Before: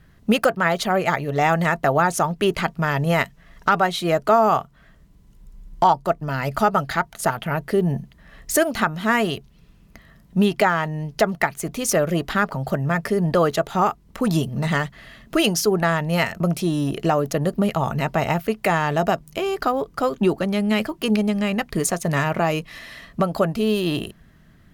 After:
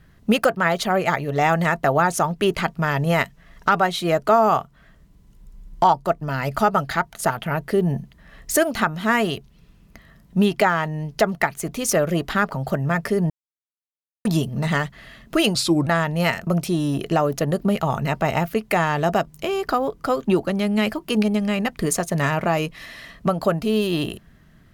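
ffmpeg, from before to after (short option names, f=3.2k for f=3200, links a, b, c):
-filter_complex "[0:a]asplit=5[a][b][c][d][e];[a]atrim=end=13.3,asetpts=PTS-STARTPTS,afade=t=out:st=13.296:d=0.004:c=hsin[f];[b]atrim=start=13.3:end=14.25,asetpts=PTS-STARTPTS,volume=0[g];[c]atrim=start=14.25:end=15.554,asetpts=PTS-STARTPTS,afade=t=in:d=0.004:c=hsin[h];[d]atrim=start=15.55:end=15.8,asetpts=PTS-STARTPTS,asetrate=34839,aresample=44100[i];[e]atrim=start=15.796[j];[f][g][h]concat=n=3:v=0:a=1[k];[k][i]acrossfade=d=0.004:c1=hsin:c2=hsin[l];[l][j]acrossfade=d=0.004:c1=hsin:c2=hsin"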